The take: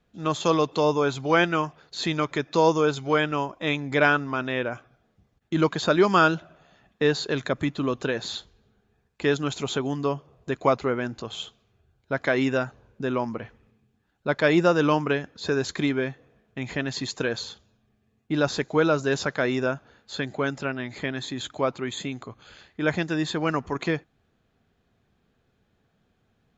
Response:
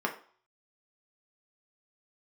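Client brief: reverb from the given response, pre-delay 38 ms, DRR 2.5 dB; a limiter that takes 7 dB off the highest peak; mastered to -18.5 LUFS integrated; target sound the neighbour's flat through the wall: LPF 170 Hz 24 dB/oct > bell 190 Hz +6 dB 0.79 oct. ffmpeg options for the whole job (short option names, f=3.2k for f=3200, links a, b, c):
-filter_complex "[0:a]alimiter=limit=-11.5dB:level=0:latency=1,asplit=2[a][b];[1:a]atrim=start_sample=2205,adelay=38[c];[b][c]afir=irnorm=-1:irlink=0,volume=-10.5dB[d];[a][d]amix=inputs=2:normalize=0,lowpass=f=170:w=0.5412,lowpass=f=170:w=1.3066,equalizer=f=190:t=o:w=0.79:g=6,volume=15.5dB"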